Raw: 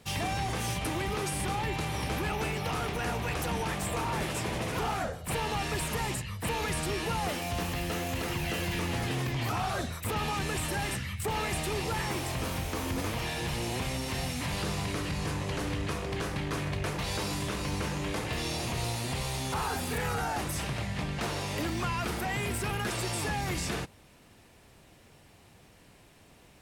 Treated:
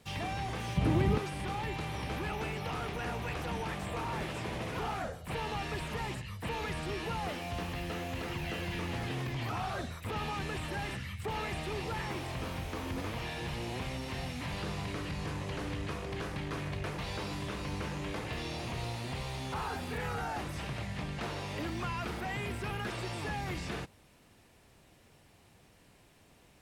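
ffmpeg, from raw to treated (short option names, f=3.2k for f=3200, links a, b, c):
-filter_complex "[0:a]asettb=1/sr,asplit=3[a][b][c];[a]atrim=end=0.774[d];[b]atrim=start=0.77:end=1.18,asetpts=PTS-STARTPTS,afade=t=in:d=0.004:c=qsin,afade=t=out:st=0.406:d=0.004:c=qsin,equalizer=f=140:w=0.31:g=13.5[e];[c]atrim=start=1.176[f];[d][e]acrossfade=d=0.004:c1=hsin:c2=qsin[g];[g][f]acrossfade=d=0.004:c1=qsin:c2=hsin,acrossover=split=4600[h][i];[i]acompressor=threshold=-51dB:ratio=4:attack=1:release=60[j];[h][j]amix=inputs=2:normalize=0,volume=-4.5dB"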